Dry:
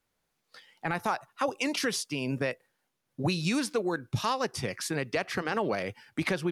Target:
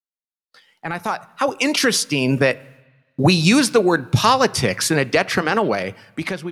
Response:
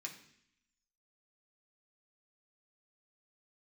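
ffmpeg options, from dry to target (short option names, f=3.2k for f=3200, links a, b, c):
-filter_complex "[0:a]agate=range=-33dB:threshold=-59dB:ratio=3:detection=peak,dynaudnorm=f=600:g=5:m=15dB,asplit=2[a][b];[1:a]atrim=start_sample=2205,asetrate=25578,aresample=44100[c];[b][c]afir=irnorm=-1:irlink=0,volume=-16dB[d];[a][d]amix=inputs=2:normalize=0"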